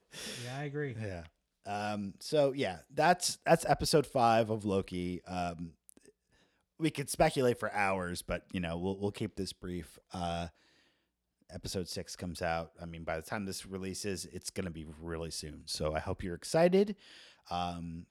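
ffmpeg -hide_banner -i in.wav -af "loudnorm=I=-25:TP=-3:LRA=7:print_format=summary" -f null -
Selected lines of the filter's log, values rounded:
Input Integrated:    -34.1 LUFS
Input True Peak:     -11.3 dBTP
Input LRA:             8.9 LU
Input Threshold:     -44.6 LUFS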